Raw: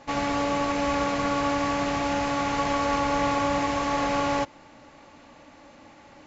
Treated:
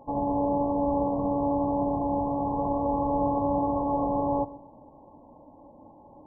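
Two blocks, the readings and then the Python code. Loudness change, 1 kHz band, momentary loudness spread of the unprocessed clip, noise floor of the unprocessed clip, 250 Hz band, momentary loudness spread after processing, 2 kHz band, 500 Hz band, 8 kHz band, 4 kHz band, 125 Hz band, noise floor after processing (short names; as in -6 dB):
-1.5 dB, -2.0 dB, 2 LU, -52 dBFS, +1.0 dB, 2 LU, under -40 dB, +0.5 dB, n/a, under -40 dB, +0.5 dB, -53 dBFS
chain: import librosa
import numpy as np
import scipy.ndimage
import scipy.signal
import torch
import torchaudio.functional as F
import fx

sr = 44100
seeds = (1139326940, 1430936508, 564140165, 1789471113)

p1 = fx.brickwall_lowpass(x, sr, high_hz=1100.0)
y = p1 + fx.echo_feedback(p1, sr, ms=130, feedback_pct=35, wet_db=-17.5, dry=0)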